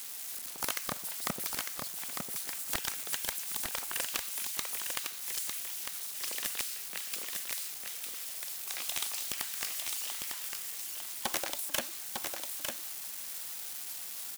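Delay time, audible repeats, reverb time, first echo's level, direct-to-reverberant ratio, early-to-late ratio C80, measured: 0.902 s, 1, none, -5.0 dB, none, none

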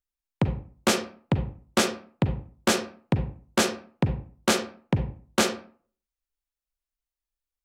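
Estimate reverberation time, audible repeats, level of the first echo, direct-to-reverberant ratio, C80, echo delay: 0.45 s, none, none, 7.5 dB, 14.5 dB, none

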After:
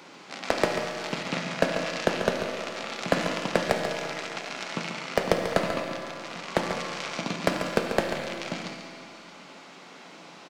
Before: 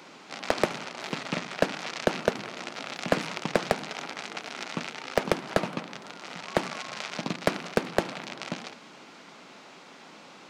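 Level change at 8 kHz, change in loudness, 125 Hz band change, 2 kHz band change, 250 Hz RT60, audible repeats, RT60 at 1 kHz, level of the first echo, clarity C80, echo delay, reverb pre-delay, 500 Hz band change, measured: +2.0 dB, +2.0 dB, +2.0 dB, +2.5 dB, 2.3 s, 1, 2.3 s, -8.0 dB, 3.5 dB, 0.14 s, 6 ms, +2.5 dB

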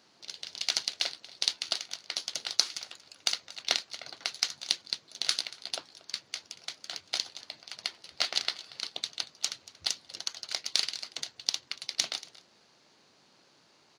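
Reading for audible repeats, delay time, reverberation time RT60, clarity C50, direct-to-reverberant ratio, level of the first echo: 1, 0.233 s, none, none, none, -19.5 dB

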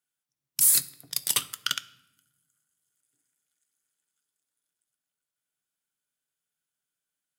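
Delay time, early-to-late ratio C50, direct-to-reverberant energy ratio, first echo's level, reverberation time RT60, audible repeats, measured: none, 18.0 dB, 12.0 dB, none, 0.95 s, none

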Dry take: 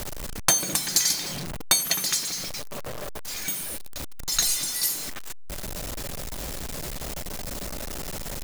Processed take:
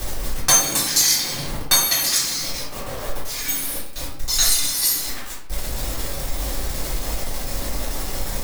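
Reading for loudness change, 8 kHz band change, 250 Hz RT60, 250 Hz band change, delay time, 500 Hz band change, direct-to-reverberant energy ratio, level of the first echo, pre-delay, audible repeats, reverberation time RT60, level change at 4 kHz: +6.0 dB, +5.5 dB, 0.75 s, +4.5 dB, none, +5.5 dB, -8.5 dB, none, 5 ms, none, 0.75 s, +6.0 dB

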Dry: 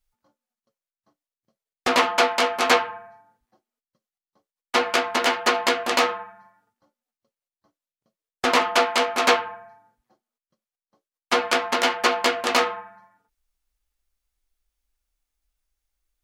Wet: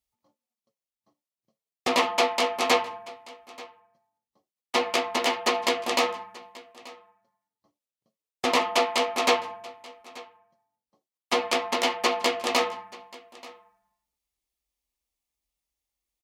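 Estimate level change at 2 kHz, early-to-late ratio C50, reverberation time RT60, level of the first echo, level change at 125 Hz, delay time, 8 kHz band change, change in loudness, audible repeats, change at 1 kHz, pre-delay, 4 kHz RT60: -5.5 dB, none, none, -21.0 dB, n/a, 0.883 s, -2.5 dB, -4.0 dB, 1, -4.0 dB, none, none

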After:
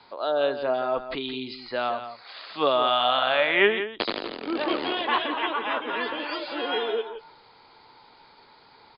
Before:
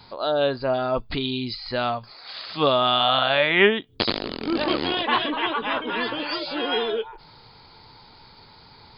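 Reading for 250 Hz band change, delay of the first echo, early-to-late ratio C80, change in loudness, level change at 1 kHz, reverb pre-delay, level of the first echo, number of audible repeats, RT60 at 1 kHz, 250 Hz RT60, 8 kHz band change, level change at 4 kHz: -5.0 dB, 0.17 s, none, -2.5 dB, -1.5 dB, none, -10.5 dB, 1, none, none, n/a, -4.5 dB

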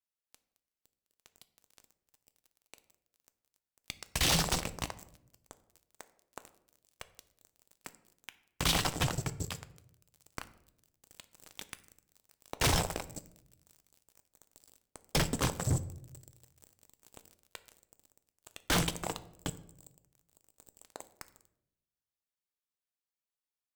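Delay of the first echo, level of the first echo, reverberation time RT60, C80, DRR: none, none, 0.80 s, 19.0 dB, 11.5 dB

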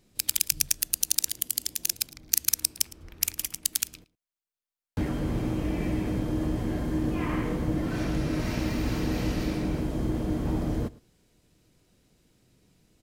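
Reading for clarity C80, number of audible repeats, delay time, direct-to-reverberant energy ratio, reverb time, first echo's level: none, 1, 0.11 s, none, none, -21.5 dB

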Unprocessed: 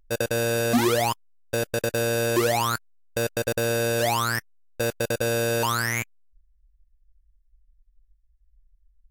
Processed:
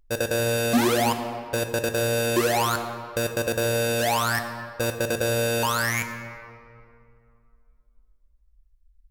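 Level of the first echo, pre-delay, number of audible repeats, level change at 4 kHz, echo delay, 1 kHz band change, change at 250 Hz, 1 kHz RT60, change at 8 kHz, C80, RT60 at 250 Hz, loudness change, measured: none, 14 ms, none, +1.0 dB, none, +1.5 dB, +1.0 dB, 2.4 s, +0.5 dB, 8.5 dB, 2.5 s, +0.5 dB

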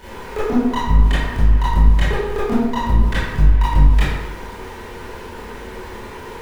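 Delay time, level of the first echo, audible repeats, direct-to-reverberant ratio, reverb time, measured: none, none, none, -11.0 dB, 1.0 s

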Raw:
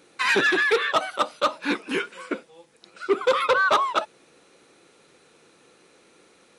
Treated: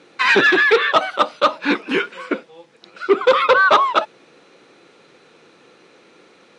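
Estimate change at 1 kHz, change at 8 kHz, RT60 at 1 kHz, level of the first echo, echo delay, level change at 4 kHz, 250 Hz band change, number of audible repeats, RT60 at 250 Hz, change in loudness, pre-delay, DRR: +7.0 dB, n/a, none, none, none, +6.0 dB, +7.0 dB, none, none, +7.0 dB, none, none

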